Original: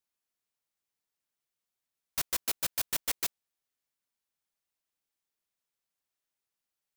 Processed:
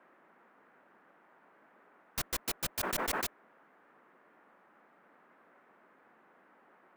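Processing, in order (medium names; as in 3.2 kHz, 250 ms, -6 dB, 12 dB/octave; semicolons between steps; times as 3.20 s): tilt EQ -1.5 dB/octave; band-stop 600 Hz, Q 18; band noise 190–1700 Hz -64 dBFS; 2.79–3.24 s: decay stretcher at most 28 dB/s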